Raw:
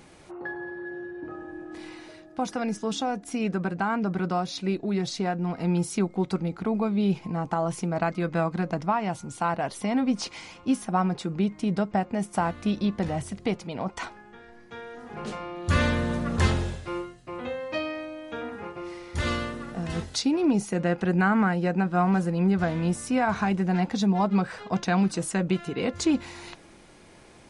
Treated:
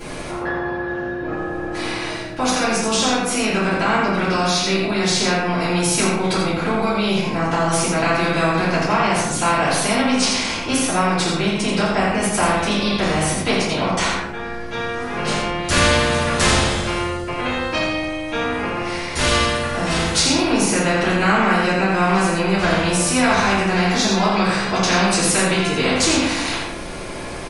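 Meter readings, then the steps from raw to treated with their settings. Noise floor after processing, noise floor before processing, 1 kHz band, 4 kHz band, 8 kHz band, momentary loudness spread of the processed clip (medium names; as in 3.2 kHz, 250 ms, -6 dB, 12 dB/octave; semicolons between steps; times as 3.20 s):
-28 dBFS, -51 dBFS, +10.0 dB, +17.0 dB, +17.5 dB, 9 LU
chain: delay 83 ms -6 dB; simulated room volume 71 m³, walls mixed, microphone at 2.9 m; spectrum-flattening compressor 2:1; trim -5.5 dB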